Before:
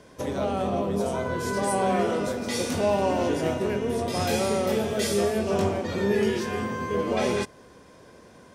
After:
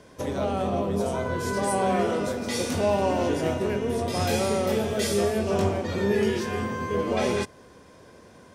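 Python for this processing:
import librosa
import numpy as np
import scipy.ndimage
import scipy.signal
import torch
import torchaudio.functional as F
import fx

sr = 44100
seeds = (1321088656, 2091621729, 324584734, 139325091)

y = fx.peak_eq(x, sr, hz=89.0, db=4.5, octaves=0.27)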